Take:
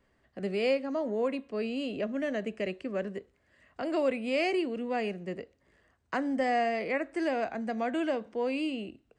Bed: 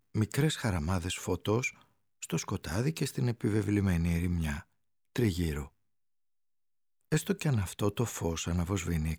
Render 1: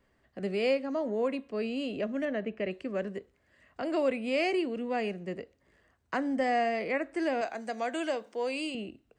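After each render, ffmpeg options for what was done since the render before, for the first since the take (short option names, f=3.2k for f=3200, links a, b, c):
-filter_complex "[0:a]asettb=1/sr,asplit=3[a][b][c];[a]atrim=end=2.254[d];[b]atrim=start=2.25:end=2.71,asetpts=PTS-STARTPTS,afade=t=in:d=0.004:c=qsin,afade=t=out:st=0.456:d=0.004:c=qsin,lowpass=3k[e];[c]atrim=start=2.706[f];[d][e]acrossfade=d=0.004:c1=hsin:c2=qsin[g];[g][f]acrossfade=d=0.004:c1=qsin:c2=hsin,asettb=1/sr,asplit=3[h][i][j];[h]atrim=end=7.414[k];[i]atrim=start=7.41:end=8.75,asetpts=PTS-STARTPTS,afade=t=in:d=0.004:c=qsin,afade=t=out:st=1.336:d=0.004:c=qsin,bass=f=250:g=-14,treble=f=4k:g=10[l];[j]atrim=start=8.746[m];[k][l]acrossfade=d=0.004:c1=hsin:c2=qsin[n];[n][m]acrossfade=d=0.004:c1=qsin:c2=hsin"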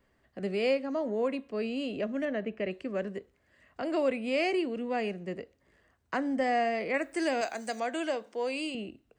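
-filter_complex "[0:a]asettb=1/sr,asplit=3[a][b][c];[a]atrim=end=6.944[d];[b]atrim=start=6.94:end=7.8,asetpts=PTS-STARTPTS,afade=t=in:d=0.004:c=qsin,afade=t=out:st=0.856:d=0.004:c=qsin,aemphasis=mode=production:type=75kf[e];[c]atrim=start=7.796[f];[d][e]acrossfade=d=0.004:c1=hsin:c2=qsin[g];[g][f]acrossfade=d=0.004:c1=qsin:c2=hsin"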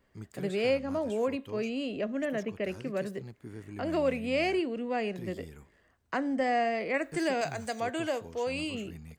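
-filter_complex "[1:a]volume=-15dB[a];[0:a][a]amix=inputs=2:normalize=0"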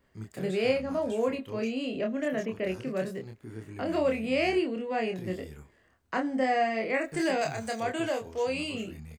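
-filter_complex "[0:a]asplit=2[a][b];[b]adelay=27,volume=-3.5dB[c];[a][c]amix=inputs=2:normalize=0"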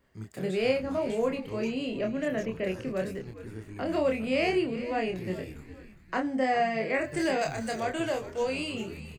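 -filter_complex "[0:a]asplit=5[a][b][c][d][e];[b]adelay=408,afreqshift=-100,volume=-14.5dB[f];[c]adelay=816,afreqshift=-200,volume=-22.2dB[g];[d]adelay=1224,afreqshift=-300,volume=-30dB[h];[e]adelay=1632,afreqshift=-400,volume=-37.7dB[i];[a][f][g][h][i]amix=inputs=5:normalize=0"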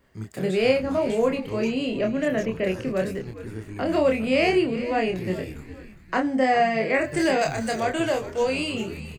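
-af "volume=6dB"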